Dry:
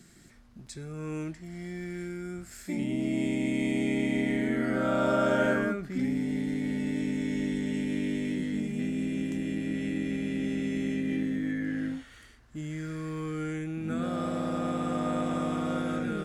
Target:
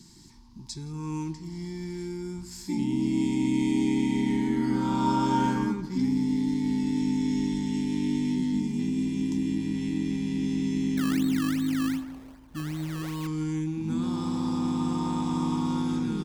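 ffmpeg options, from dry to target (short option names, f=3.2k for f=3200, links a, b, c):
-filter_complex "[0:a]firequalizer=gain_entry='entry(330,0);entry(620,-26);entry(910,11);entry(1300,-14);entry(4900,8);entry(8400,-3)':delay=0.05:min_phase=1,asettb=1/sr,asplit=3[a][b][c];[a]atrim=end=10.974[d];[b]atrim=start=10.97:end=13.27,asetpts=PTS-STARTPTS,afade=t=in:d=0.004:c=qsin,afade=t=out:st=2.296:d=0.004:c=qsin,acrusher=samples=21:mix=1:aa=0.000001:lfo=1:lforange=21:lforate=2.6[e];[c]atrim=start=13.266[f];[d][e]acrossfade=d=0.004:c1=hsin:c2=qsin[g];[g][f]acrossfade=d=0.004:c1=qsin:c2=hsin,asplit=2[h][i];[i]adelay=167,lowpass=f=2k:p=1,volume=-14dB,asplit=2[j][k];[k]adelay=167,lowpass=f=2k:p=1,volume=0.47,asplit=2[l][m];[m]adelay=167,lowpass=f=2k:p=1,volume=0.47,asplit=2[n][o];[o]adelay=167,lowpass=f=2k:p=1,volume=0.47[p];[h][j][l][n][p]amix=inputs=5:normalize=0,volume=3.5dB"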